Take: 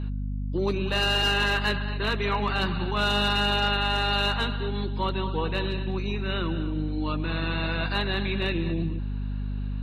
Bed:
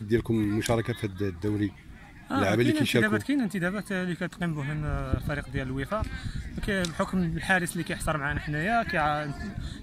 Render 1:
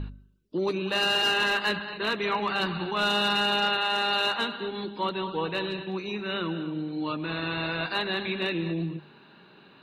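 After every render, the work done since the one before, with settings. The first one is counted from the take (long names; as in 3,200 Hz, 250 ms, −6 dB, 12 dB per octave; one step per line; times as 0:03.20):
hum removal 50 Hz, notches 5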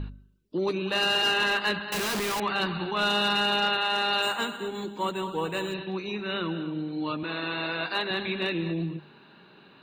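0:01.92–0:02.40: sign of each sample alone
0:04.22–0:05.74: linearly interpolated sample-rate reduction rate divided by 4×
0:07.23–0:08.11: high-pass filter 220 Hz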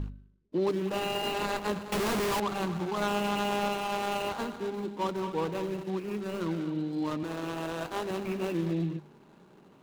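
running median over 25 samples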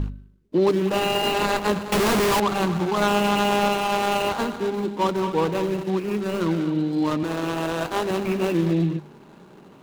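level +9 dB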